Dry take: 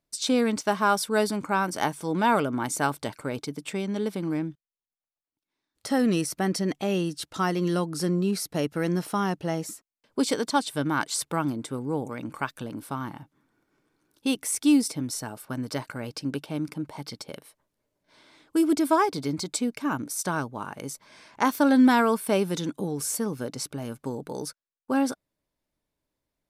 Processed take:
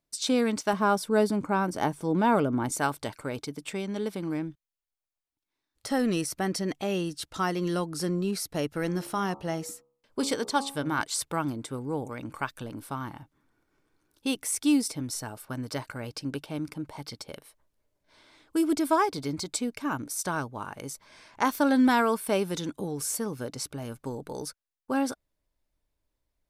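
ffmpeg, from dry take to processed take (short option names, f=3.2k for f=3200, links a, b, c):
-filter_complex "[0:a]asettb=1/sr,asplit=3[a][b][c];[a]atrim=end=0.734[d];[b]atrim=start=0.73:end=2.72,asetpts=PTS-STARTPTS,afade=t=in:d=0.004:c=qsin,afade=t=out:st=1.986:d=0.004:c=qsin,tiltshelf=f=830:g=5.5[e];[c]atrim=start=2.716[f];[d][e]acrossfade=d=0.004:c1=hsin:c2=qsin[g];[g][f]acrossfade=d=0.004:c1=qsin:c2=hsin,asettb=1/sr,asplit=3[h][i][j];[h]atrim=end=8.804[k];[i]atrim=start=8.8:end=11.01,asetpts=PTS-STARTPTS,afade=t=in:d=0.004:c=qsin,afade=t=out:st=2.206:d=0.004:c=qsin,bandreject=f=69.14:t=h:w=4,bandreject=f=138.28:t=h:w=4,bandreject=f=207.42:t=h:w=4,bandreject=f=276.56:t=h:w=4,bandreject=f=345.7:t=h:w=4,bandreject=f=414.84:t=h:w=4,bandreject=f=483.98:t=h:w=4,bandreject=f=553.12:t=h:w=4,bandreject=f=622.26:t=h:w=4,bandreject=f=691.4:t=h:w=4,bandreject=f=760.54:t=h:w=4,bandreject=f=829.68:t=h:w=4,bandreject=f=898.82:t=h:w=4,bandreject=f=967.96:t=h:w=4,bandreject=f=1.0371k:t=h:w=4,bandreject=f=1.10624k:t=h:w=4,bandreject=f=1.17538k:t=h:w=4,bandreject=f=1.24452k:t=h:w=4,bandreject=f=1.31366k:t=h:w=4[l];[j]atrim=start=11.006[m];[k][l]acrossfade=d=0.004:c1=hsin:c2=qsin[n];[n][m]acrossfade=d=0.004:c1=qsin:c2=hsin,asubboost=boost=4:cutoff=77,volume=-1.5dB"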